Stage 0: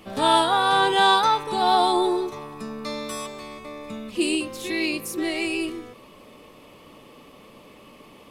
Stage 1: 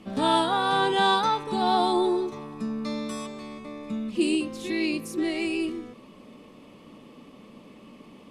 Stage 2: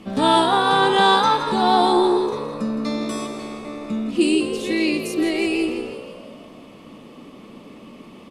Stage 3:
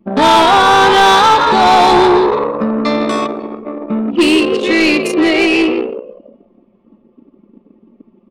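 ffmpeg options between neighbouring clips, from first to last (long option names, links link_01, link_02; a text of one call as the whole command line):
ffmpeg -i in.wav -af "lowpass=9600,equalizer=frequency=220:width_type=o:width=1.1:gain=10.5,volume=-5dB" out.wav
ffmpeg -i in.wav -filter_complex "[0:a]asplit=7[link_01][link_02][link_03][link_04][link_05][link_06][link_07];[link_02]adelay=165,afreqshift=60,volume=-10.5dB[link_08];[link_03]adelay=330,afreqshift=120,volume=-15.5dB[link_09];[link_04]adelay=495,afreqshift=180,volume=-20.6dB[link_10];[link_05]adelay=660,afreqshift=240,volume=-25.6dB[link_11];[link_06]adelay=825,afreqshift=300,volume=-30.6dB[link_12];[link_07]adelay=990,afreqshift=360,volume=-35.7dB[link_13];[link_01][link_08][link_09][link_10][link_11][link_12][link_13]amix=inputs=7:normalize=0,volume=6dB" out.wav
ffmpeg -i in.wav -filter_complex "[0:a]anlmdn=100,asplit=2[link_01][link_02];[link_02]highpass=frequency=720:poles=1,volume=22dB,asoftclip=type=tanh:threshold=-3.5dB[link_03];[link_01][link_03]amix=inputs=2:normalize=0,lowpass=frequency=3200:poles=1,volume=-6dB,volume=2.5dB" out.wav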